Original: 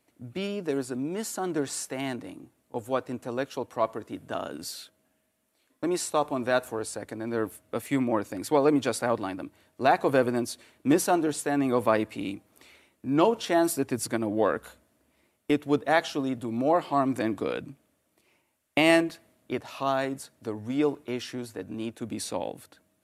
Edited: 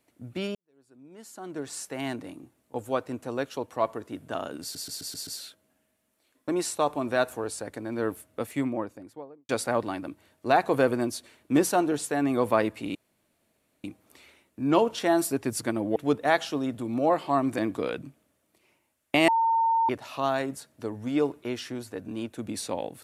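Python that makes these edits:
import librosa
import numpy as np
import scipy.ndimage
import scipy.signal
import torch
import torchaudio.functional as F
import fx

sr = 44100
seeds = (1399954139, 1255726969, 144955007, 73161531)

y = fx.studio_fade_out(x, sr, start_s=7.6, length_s=1.24)
y = fx.edit(y, sr, fx.fade_in_span(start_s=0.55, length_s=1.52, curve='qua'),
    fx.stutter(start_s=4.62, slice_s=0.13, count=6),
    fx.insert_room_tone(at_s=12.3, length_s=0.89),
    fx.cut(start_s=14.42, length_s=1.17),
    fx.bleep(start_s=18.91, length_s=0.61, hz=909.0, db=-20.0), tone=tone)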